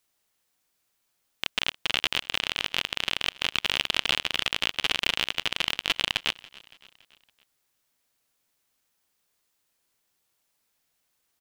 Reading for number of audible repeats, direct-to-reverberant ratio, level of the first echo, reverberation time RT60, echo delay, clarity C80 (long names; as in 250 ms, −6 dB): 3, no reverb audible, −22.0 dB, no reverb audible, 282 ms, no reverb audible